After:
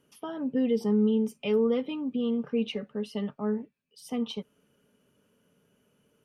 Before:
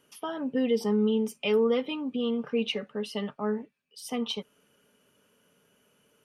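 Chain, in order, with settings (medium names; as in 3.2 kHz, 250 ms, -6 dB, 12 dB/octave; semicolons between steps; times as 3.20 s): bass shelf 440 Hz +10.5 dB; trim -6.5 dB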